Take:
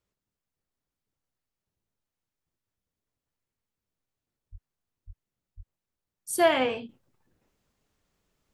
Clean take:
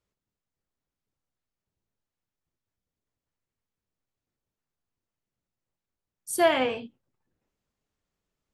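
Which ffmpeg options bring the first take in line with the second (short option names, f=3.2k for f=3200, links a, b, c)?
-filter_complex "[0:a]asplit=3[a][b][c];[a]afade=t=out:st=4.51:d=0.02[d];[b]highpass=f=140:w=0.5412,highpass=f=140:w=1.3066,afade=t=in:st=4.51:d=0.02,afade=t=out:st=4.63:d=0.02[e];[c]afade=t=in:st=4.63:d=0.02[f];[d][e][f]amix=inputs=3:normalize=0,asplit=3[g][h][i];[g]afade=t=out:st=5.06:d=0.02[j];[h]highpass=f=140:w=0.5412,highpass=f=140:w=1.3066,afade=t=in:st=5.06:d=0.02,afade=t=out:st=5.18:d=0.02[k];[i]afade=t=in:st=5.18:d=0.02[l];[j][k][l]amix=inputs=3:normalize=0,asplit=3[m][n][o];[m]afade=t=out:st=5.56:d=0.02[p];[n]highpass=f=140:w=0.5412,highpass=f=140:w=1.3066,afade=t=in:st=5.56:d=0.02,afade=t=out:st=5.68:d=0.02[q];[o]afade=t=in:st=5.68:d=0.02[r];[p][q][r]amix=inputs=3:normalize=0,asetnsamples=n=441:p=0,asendcmd='6.89 volume volume -8.5dB',volume=0dB"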